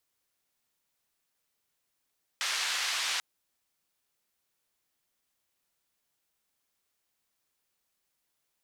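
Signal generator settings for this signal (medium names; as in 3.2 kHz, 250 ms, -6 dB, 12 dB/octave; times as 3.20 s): noise band 1.2–4.9 kHz, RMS -31.5 dBFS 0.79 s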